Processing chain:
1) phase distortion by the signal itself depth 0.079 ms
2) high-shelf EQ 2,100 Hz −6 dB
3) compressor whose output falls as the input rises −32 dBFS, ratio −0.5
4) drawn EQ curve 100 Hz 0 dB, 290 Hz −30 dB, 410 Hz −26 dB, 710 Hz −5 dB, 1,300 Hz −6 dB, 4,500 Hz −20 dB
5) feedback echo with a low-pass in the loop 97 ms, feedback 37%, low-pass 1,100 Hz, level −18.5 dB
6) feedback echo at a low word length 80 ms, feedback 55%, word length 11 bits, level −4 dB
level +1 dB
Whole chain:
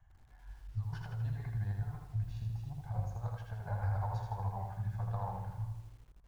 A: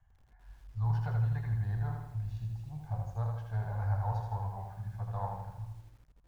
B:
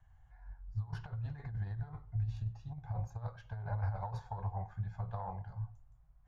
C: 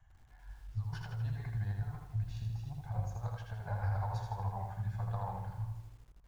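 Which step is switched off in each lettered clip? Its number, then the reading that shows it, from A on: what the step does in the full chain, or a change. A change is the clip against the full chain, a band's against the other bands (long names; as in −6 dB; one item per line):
3, change in momentary loudness spread +4 LU
6, change in integrated loudness −2.0 LU
2, 2 kHz band +2.0 dB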